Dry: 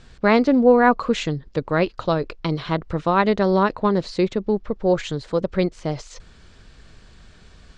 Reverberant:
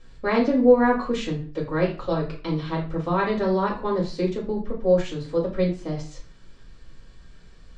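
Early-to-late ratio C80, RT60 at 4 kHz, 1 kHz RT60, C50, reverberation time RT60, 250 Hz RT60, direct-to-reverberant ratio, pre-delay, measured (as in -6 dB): 13.0 dB, 0.30 s, 0.40 s, 7.5 dB, 0.40 s, 0.50 s, -4.5 dB, 4 ms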